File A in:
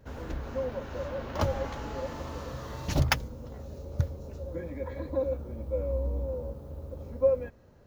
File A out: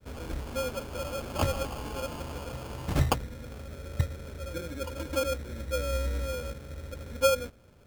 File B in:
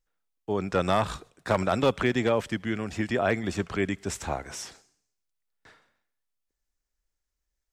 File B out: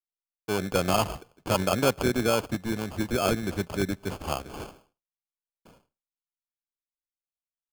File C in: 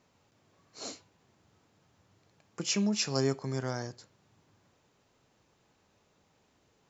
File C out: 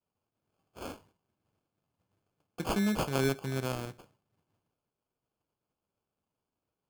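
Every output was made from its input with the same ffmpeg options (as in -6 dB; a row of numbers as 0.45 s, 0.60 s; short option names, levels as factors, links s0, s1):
-af "agate=range=0.0224:threshold=0.00141:ratio=3:detection=peak,acrusher=samples=23:mix=1:aa=0.000001"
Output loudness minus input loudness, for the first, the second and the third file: +0.5 LU, 0.0 LU, +0.5 LU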